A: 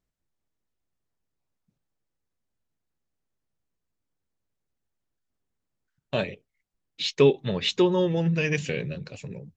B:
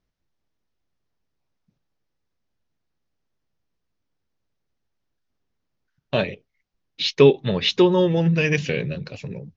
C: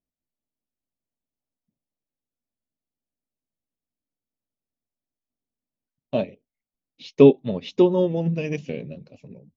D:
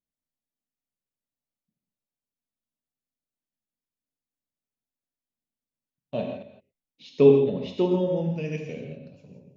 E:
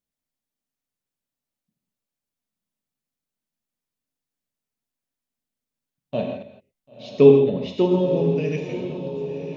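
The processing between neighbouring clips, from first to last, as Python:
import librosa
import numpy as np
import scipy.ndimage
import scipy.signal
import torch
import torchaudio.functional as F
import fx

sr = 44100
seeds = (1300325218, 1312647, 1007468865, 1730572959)

y1 = scipy.signal.sosfilt(scipy.signal.butter(8, 6200.0, 'lowpass', fs=sr, output='sos'), x)
y1 = y1 * 10.0 ** (5.0 / 20.0)
y2 = fx.graphic_eq_15(y1, sr, hz=(250, 630, 1600, 4000), db=(11, 7, -11, -5))
y2 = fx.upward_expand(y2, sr, threshold_db=-31.0, expansion=1.5)
y2 = y2 * 10.0 ** (-3.0 / 20.0)
y3 = fx.reverse_delay(y2, sr, ms=119, wet_db=-12.0)
y3 = fx.rev_gated(y3, sr, seeds[0], gate_ms=190, shape='flat', drr_db=2.0)
y3 = y3 * 10.0 ** (-7.0 / 20.0)
y4 = fx.echo_diffused(y3, sr, ms=1005, feedback_pct=56, wet_db=-11.0)
y4 = y4 * 10.0 ** (4.0 / 20.0)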